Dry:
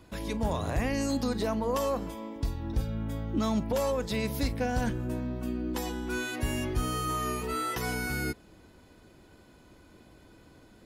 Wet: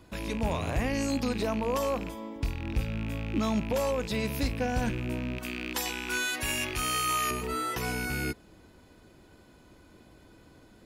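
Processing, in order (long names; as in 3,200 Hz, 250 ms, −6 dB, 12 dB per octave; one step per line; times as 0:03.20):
loose part that buzzes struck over −34 dBFS, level −29 dBFS
0:05.38–0:07.31: tilt shelving filter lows −8 dB, about 750 Hz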